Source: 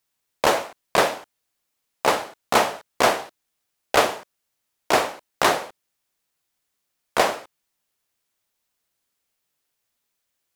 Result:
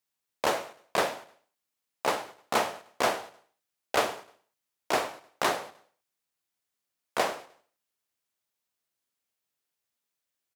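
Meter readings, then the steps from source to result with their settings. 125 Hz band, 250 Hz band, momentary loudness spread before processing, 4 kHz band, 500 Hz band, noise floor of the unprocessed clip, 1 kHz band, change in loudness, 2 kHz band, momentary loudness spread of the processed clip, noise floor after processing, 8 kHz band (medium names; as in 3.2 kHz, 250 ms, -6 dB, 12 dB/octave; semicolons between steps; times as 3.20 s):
-9.0 dB, -8.0 dB, 10 LU, -8.0 dB, -8.0 dB, -78 dBFS, -8.0 dB, -8.0 dB, -8.0 dB, 10 LU, -85 dBFS, -8.0 dB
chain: high-pass 67 Hz; hum notches 50/100/150 Hz; on a send: feedback delay 102 ms, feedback 42%, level -21 dB; on the sum: trim -8 dB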